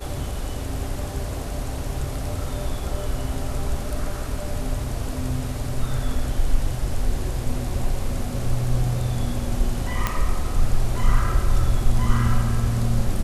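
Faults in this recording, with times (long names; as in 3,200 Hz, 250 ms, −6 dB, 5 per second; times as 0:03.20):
0:10.07: click −7 dBFS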